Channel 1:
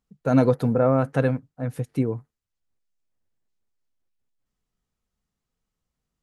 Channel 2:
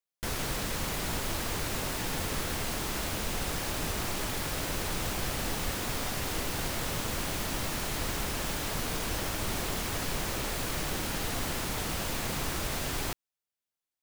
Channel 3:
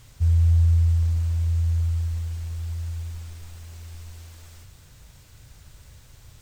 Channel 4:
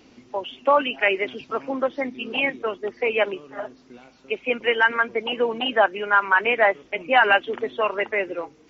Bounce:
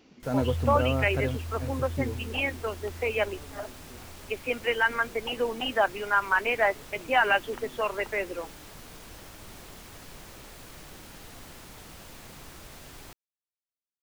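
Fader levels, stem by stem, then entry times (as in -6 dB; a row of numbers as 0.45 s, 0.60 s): -9.0 dB, -13.5 dB, -13.0 dB, -6.0 dB; 0.00 s, 0.00 s, 0.20 s, 0.00 s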